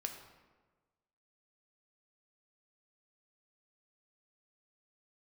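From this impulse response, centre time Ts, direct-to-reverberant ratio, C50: 28 ms, 3.5 dB, 7.0 dB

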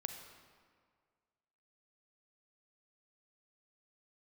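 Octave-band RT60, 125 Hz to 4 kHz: 1.9, 1.8, 1.9, 1.9, 1.6, 1.2 s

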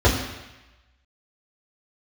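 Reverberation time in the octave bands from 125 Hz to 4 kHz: 0.95, 0.95, 0.95, 1.1, 1.2, 1.1 s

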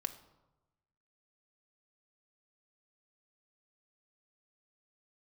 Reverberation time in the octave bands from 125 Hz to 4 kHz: 1.4, 1.1, 1.1, 1.0, 0.70, 0.60 s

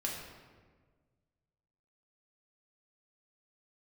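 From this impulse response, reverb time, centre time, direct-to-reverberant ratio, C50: 1.5 s, 63 ms, -3.0 dB, 2.5 dB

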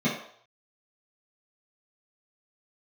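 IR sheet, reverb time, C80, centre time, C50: 0.60 s, 8.5 dB, 37 ms, 4.5 dB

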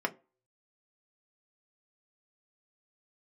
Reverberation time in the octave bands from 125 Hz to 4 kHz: 0.25, 0.30, 0.35, 0.30, 0.25, 0.15 s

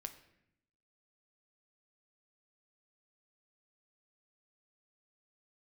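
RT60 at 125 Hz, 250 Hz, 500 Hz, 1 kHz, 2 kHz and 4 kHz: 1.1, 1.1, 0.80, 0.70, 0.80, 0.60 s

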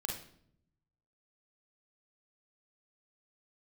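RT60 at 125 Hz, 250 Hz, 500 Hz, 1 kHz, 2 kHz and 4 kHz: 1.3, 1.1, 0.75, 0.55, 0.55, 0.50 s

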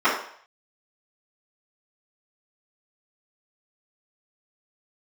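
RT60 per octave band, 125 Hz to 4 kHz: 0.50, 0.45, 0.55, 0.60, 0.60, 0.60 s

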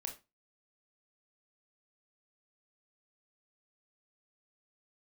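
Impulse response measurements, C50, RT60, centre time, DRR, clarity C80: 11.0 dB, 0.25 s, 15 ms, 3.0 dB, 17.5 dB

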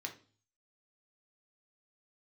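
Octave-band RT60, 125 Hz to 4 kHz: 0.75, 0.50, 0.45, 0.40, 0.35, 0.45 s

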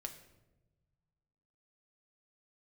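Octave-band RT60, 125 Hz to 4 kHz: 2.2, 1.9, 1.3, 0.90, 0.75, 0.65 s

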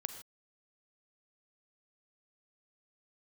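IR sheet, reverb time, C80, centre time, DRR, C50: not exponential, 11.0 dB, 12 ms, 8.5 dB, 9.0 dB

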